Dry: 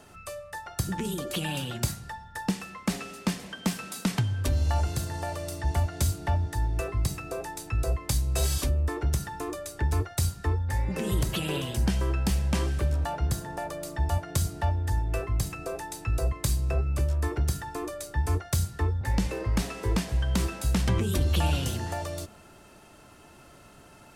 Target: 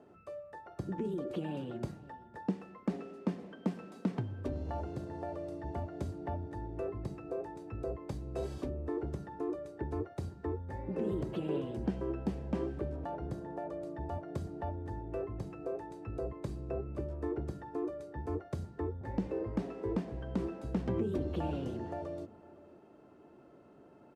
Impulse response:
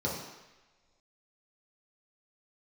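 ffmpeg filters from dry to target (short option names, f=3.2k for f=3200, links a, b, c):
-filter_complex "[0:a]bandpass=f=360:t=q:w=1.3:csg=0,asplit=2[a][b];[b]adelay=507.3,volume=-19dB,highshelf=f=4k:g=-11.4[c];[a][c]amix=inputs=2:normalize=0"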